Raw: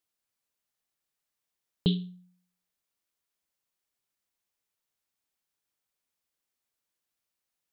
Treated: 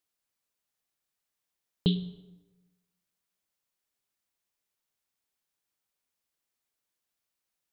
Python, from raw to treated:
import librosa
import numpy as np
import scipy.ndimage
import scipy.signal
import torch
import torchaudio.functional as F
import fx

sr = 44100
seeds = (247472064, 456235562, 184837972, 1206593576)

y = fx.rev_plate(x, sr, seeds[0], rt60_s=1.2, hf_ratio=0.6, predelay_ms=85, drr_db=17.0)